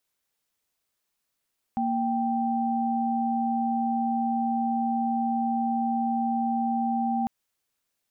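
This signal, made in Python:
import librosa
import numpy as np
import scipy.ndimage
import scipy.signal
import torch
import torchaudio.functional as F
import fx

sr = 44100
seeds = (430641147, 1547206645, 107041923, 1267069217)

y = fx.chord(sr, length_s=5.5, notes=(58, 79), wave='sine', level_db=-26.0)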